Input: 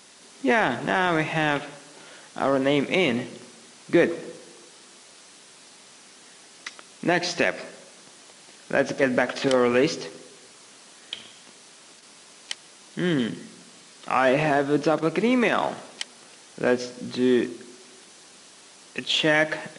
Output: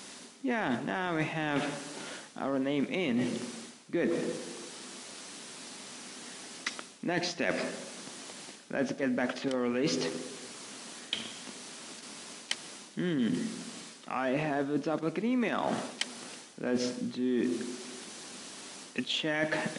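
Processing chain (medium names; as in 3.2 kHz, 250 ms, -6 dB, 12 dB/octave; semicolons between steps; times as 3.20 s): peaking EQ 240 Hz +7 dB 0.68 oct; reverse; compression 6:1, threshold -32 dBFS, peak gain reduction 19 dB; reverse; trim +3.5 dB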